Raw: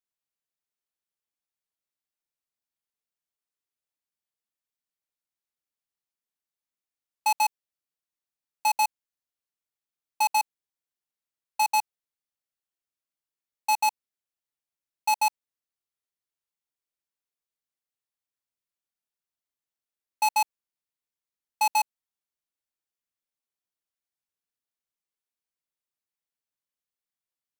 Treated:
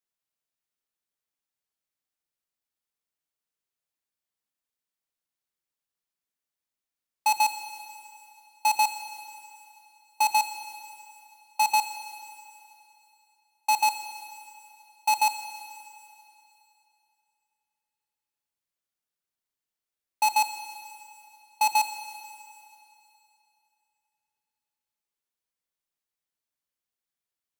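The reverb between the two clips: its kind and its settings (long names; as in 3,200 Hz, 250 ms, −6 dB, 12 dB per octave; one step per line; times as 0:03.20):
four-comb reverb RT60 2.8 s, combs from 25 ms, DRR 9 dB
level +1 dB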